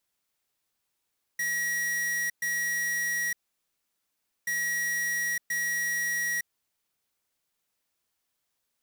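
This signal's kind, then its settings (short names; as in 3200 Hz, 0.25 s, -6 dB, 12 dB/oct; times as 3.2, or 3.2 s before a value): beep pattern square 1910 Hz, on 0.91 s, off 0.12 s, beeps 2, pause 1.14 s, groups 2, -29 dBFS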